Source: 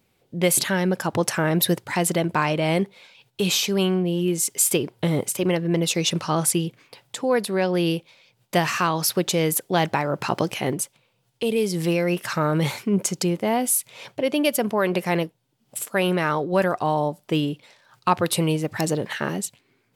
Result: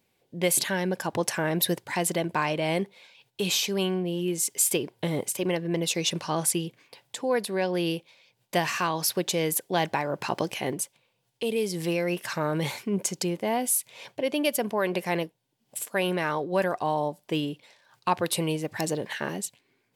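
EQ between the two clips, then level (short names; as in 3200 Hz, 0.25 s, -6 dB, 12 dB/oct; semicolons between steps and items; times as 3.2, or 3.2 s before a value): low shelf 180 Hz -7.5 dB; notch 1300 Hz, Q 7.1; -3.5 dB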